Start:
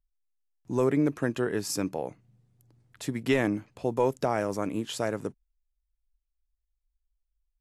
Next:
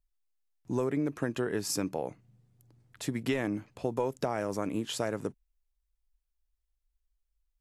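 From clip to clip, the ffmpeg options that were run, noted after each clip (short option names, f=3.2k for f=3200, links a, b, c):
-af "acompressor=threshold=-26dB:ratio=6"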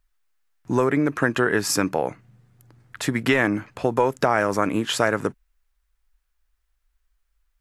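-af "equalizer=f=1.5k:w=0.93:g=10,volume=8.5dB"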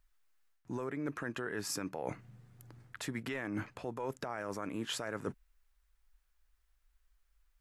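-af "alimiter=limit=-13.5dB:level=0:latency=1:release=126,areverse,acompressor=threshold=-32dB:ratio=16,areverse,volume=-2dB"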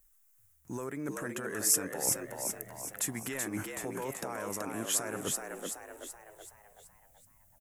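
-filter_complex "[0:a]aexciter=amount=7.3:drive=3.9:freq=6.2k,asplit=2[a][b];[b]asplit=6[c][d][e][f][g][h];[c]adelay=379,afreqshift=76,volume=-4dB[i];[d]adelay=758,afreqshift=152,volume=-10dB[j];[e]adelay=1137,afreqshift=228,volume=-16dB[k];[f]adelay=1516,afreqshift=304,volume=-22.1dB[l];[g]adelay=1895,afreqshift=380,volume=-28.1dB[m];[h]adelay=2274,afreqshift=456,volume=-34.1dB[n];[i][j][k][l][m][n]amix=inputs=6:normalize=0[o];[a][o]amix=inputs=2:normalize=0"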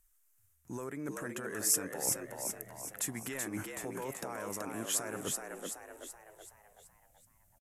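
-af "aresample=32000,aresample=44100,volume=-2.5dB"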